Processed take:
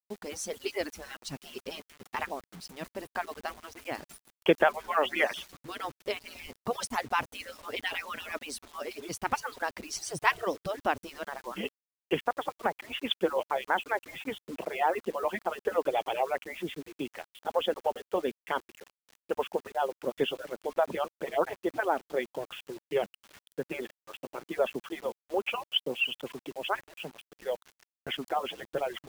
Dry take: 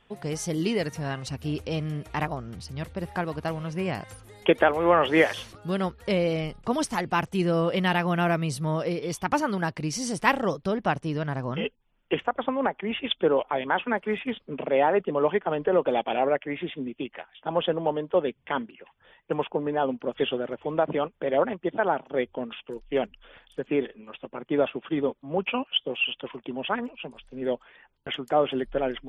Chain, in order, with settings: median-filter separation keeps percussive; requantised 8-bit, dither none; gain -2.5 dB

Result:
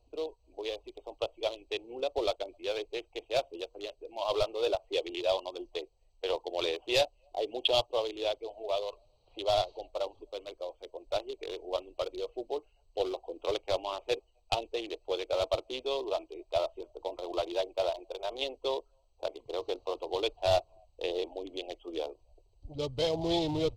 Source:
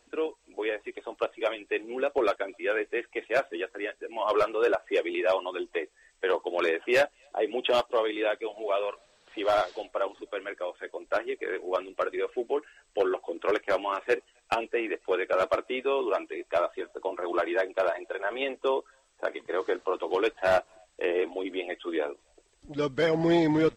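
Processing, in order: Wiener smoothing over 25 samples; EQ curve 110 Hz 0 dB, 190 Hz -22 dB, 710 Hz -10 dB, 1000 Hz -14 dB, 1600 Hz -28 dB, 3700 Hz +2 dB, 7900 Hz -6 dB; gain +8.5 dB

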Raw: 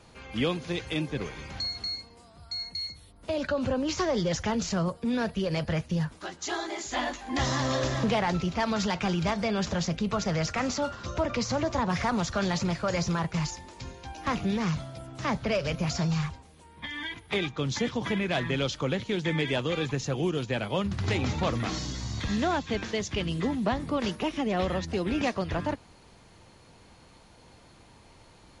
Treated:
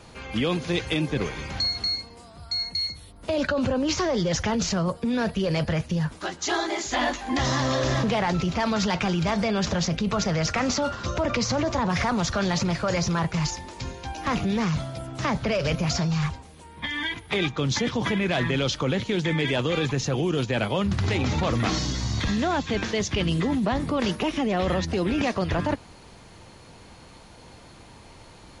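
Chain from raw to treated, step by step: in parallel at -1 dB: negative-ratio compressor -30 dBFS, ratio -0.5; on the sum: dynamic EQ 7200 Hz, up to -4 dB, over -49 dBFS, Q 7.4

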